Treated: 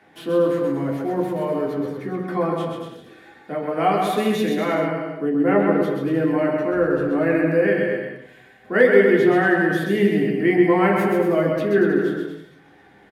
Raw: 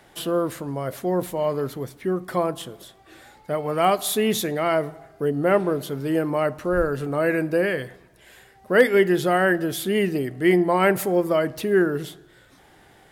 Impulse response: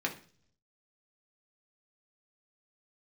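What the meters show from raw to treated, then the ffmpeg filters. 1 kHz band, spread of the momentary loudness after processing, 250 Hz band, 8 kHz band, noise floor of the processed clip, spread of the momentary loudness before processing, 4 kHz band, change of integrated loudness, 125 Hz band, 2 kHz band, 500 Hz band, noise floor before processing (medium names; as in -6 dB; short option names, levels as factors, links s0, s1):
+1.5 dB, 11 LU, +4.5 dB, under -10 dB, -51 dBFS, 11 LU, -3.5 dB, +2.5 dB, +2.5 dB, +2.5 dB, +2.5 dB, -54 dBFS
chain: -filter_complex "[0:a]highshelf=f=4400:g=-9.5,aecho=1:1:130|234|317.2|383.8|437:0.631|0.398|0.251|0.158|0.1[s0];[1:a]atrim=start_sample=2205[s1];[s0][s1]afir=irnorm=-1:irlink=0,volume=0.562"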